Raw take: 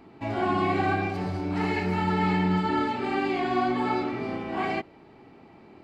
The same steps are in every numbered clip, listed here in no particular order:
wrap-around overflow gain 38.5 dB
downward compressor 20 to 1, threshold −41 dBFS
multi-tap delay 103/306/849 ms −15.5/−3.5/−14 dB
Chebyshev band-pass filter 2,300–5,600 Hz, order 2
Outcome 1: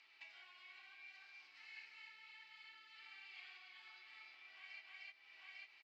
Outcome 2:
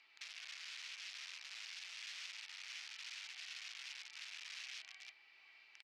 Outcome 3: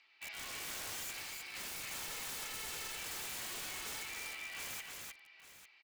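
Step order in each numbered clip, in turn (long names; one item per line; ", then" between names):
multi-tap delay, then downward compressor, then Chebyshev band-pass filter, then wrap-around overflow
downward compressor, then multi-tap delay, then wrap-around overflow, then Chebyshev band-pass filter
Chebyshev band-pass filter, then wrap-around overflow, then downward compressor, then multi-tap delay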